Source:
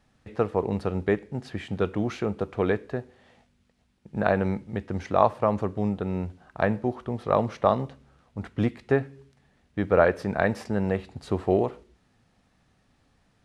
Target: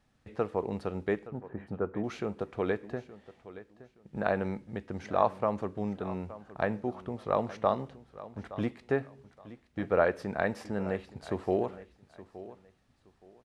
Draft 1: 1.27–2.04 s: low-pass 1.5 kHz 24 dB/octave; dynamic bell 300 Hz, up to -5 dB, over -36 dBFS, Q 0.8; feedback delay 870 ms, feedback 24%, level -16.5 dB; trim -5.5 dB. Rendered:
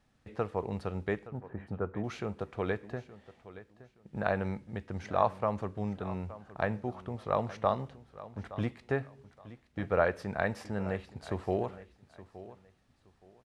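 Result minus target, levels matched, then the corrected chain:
125 Hz band +4.0 dB
1.27–2.04 s: low-pass 1.5 kHz 24 dB/octave; dynamic bell 98 Hz, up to -5 dB, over -36 dBFS, Q 0.8; feedback delay 870 ms, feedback 24%, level -16.5 dB; trim -5.5 dB

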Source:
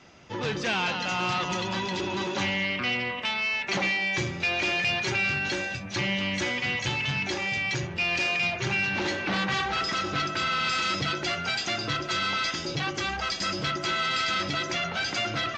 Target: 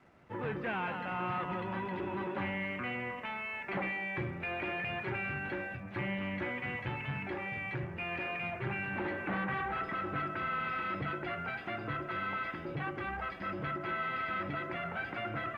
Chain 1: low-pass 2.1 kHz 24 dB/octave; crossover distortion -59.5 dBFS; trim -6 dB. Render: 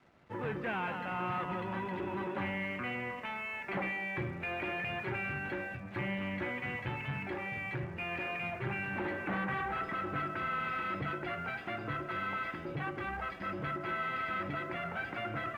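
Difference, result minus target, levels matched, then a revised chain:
crossover distortion: distortion +6 dB
low-pass 2.1 kHz 24 dB/octave; crossover distortion -66 dBFS; trim -6 dB

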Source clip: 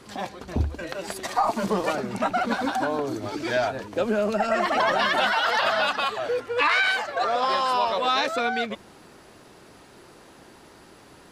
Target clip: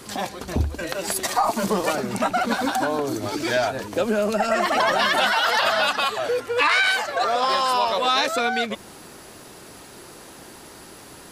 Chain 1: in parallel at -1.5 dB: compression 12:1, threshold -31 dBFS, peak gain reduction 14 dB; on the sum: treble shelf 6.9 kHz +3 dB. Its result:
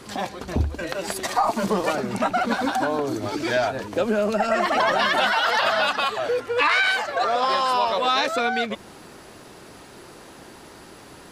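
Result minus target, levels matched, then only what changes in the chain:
8 kHz band -5.0 dB
change: treble shelf 6.9 kHz +13 dB

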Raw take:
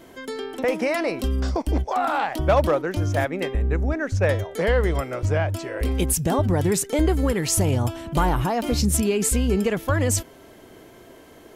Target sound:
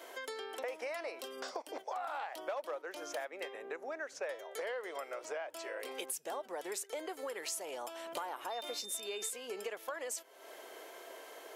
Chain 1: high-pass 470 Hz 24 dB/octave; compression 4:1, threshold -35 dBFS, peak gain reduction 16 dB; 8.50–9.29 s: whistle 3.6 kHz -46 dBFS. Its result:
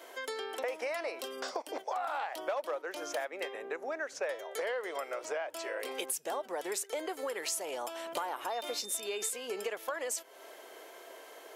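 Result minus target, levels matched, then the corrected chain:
compression: peak gain reduction -4.5 dB
high-pass 470 Hz 24 dB/octave; compression 4:1, threshold -41 dBFS, peak gain reduction 20.5 dB; 8.50–9.29 s: whistle 3.6 kHz -46 dBFS

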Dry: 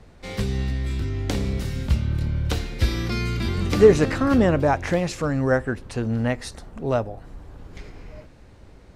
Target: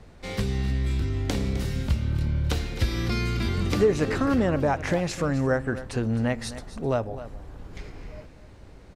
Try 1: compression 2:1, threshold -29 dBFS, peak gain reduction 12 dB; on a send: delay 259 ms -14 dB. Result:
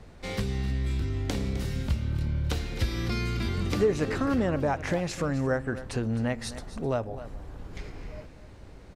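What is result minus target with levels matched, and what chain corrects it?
compression: peak gain reduction +3 dB
compression 2:1, threshold -22.5 dBFS, peak gain reduction 8.5 dB; on a send: delay 259 ms -14 dB

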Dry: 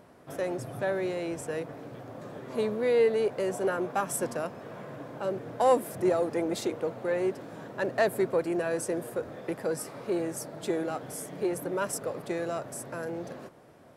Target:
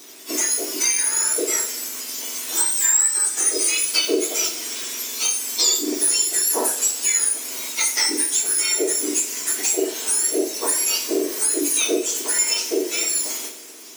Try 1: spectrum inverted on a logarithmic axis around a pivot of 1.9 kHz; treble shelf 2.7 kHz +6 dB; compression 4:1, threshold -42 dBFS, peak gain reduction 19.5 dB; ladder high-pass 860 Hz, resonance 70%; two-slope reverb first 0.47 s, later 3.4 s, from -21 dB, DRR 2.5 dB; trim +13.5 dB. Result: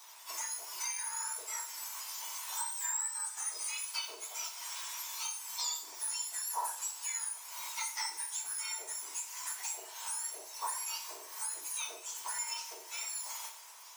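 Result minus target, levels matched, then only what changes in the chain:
1 kHz band +11.0 dB; compression: peak gain reduction +7 dB
change: compression 4:1, threshold -33 dBFS, peak gain reduction 13 dB; remove: ladder high-pass 860 Hz, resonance 70%

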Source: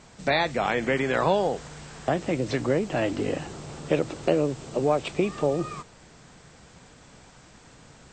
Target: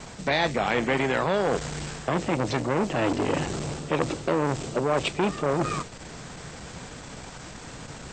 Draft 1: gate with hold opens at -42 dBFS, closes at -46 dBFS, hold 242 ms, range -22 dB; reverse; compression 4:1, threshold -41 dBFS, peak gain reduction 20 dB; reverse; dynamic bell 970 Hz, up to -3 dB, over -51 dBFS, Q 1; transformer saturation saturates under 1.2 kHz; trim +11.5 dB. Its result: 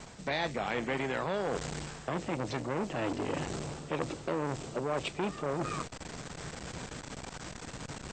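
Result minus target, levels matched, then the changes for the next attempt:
compression: peak gain reduction +8.5 dB
change: compression 4:1, threshold -29.5 dBFS, peak gain reduction 11.5 dB

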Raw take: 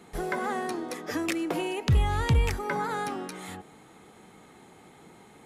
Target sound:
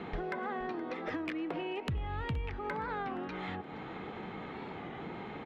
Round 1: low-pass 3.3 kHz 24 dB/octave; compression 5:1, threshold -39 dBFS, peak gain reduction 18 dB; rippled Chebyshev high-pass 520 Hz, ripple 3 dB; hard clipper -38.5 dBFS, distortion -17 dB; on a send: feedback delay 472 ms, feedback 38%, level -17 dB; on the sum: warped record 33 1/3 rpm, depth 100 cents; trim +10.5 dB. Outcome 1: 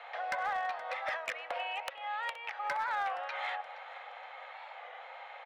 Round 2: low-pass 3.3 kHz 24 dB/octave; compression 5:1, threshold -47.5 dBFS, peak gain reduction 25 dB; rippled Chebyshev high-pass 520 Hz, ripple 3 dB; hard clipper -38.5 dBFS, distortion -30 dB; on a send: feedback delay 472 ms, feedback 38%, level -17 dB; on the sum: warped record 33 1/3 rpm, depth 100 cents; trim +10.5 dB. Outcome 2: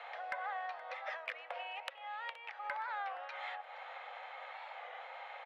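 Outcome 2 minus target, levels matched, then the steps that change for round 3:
500 Hz band -5.5 dB
remove: rippled Chebyshev high-pass 520 Hz, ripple 3 dB

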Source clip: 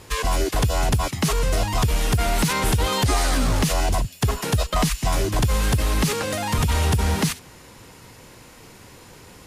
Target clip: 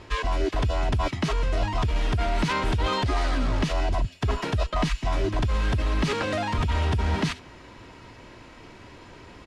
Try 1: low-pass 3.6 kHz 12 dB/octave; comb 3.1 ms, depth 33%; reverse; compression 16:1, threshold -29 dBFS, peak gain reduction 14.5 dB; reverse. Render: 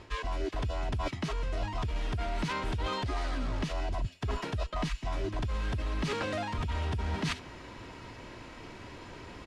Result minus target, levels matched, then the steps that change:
compression: peak gain reduction +8.5 dB
change: compression 16:1, threshold -20 dBFS, peak gain reduction 6.5 dB

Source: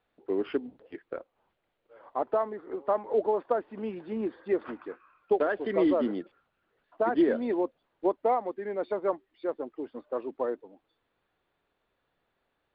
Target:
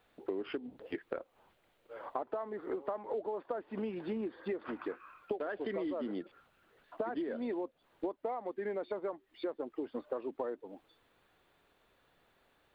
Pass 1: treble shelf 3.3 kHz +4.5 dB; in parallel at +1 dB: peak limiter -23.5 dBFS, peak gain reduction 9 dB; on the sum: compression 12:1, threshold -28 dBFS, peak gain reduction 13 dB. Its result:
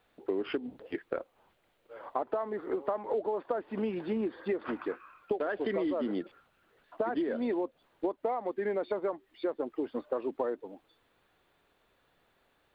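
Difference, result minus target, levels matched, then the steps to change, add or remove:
compression: peak gain reduction -5.5 dB
change: compression 12:1, threshold -34 dBFS, peak gain reduction 18.5 dB

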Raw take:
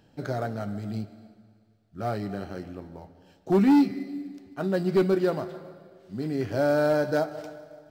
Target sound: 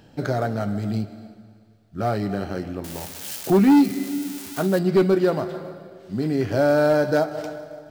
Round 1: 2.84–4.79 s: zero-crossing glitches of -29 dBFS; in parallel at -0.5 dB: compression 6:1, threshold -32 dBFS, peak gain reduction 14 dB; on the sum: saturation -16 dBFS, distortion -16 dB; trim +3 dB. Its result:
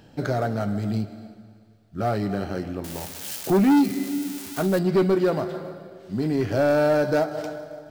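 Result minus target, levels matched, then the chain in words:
saturation: distortion +18 dB
2.84–4.79 s: zero-crossing glitches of -29 dBFS; in parallel at -0.5 dB: compression 6:1, threshold -32 dBFS, peak gain reduction 14 dB; on the sum: saturation -5.5 dBFS, distortion -35 dB; trim +3 dB

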